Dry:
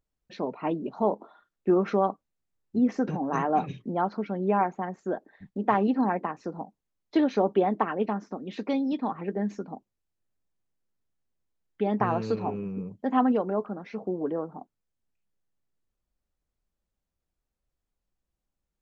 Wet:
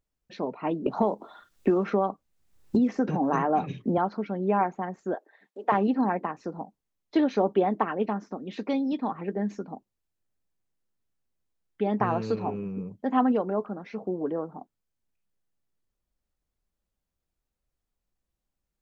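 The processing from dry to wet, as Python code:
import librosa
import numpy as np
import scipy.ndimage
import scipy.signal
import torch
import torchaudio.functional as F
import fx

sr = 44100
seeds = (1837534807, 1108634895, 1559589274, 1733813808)

y = fx.band_squash(x, sr, depth_pct=100, at=(0.86, 3.98))
y = fx.highpass(y, sr, hz=400.0, slope=24, at=(5.14, 5.72))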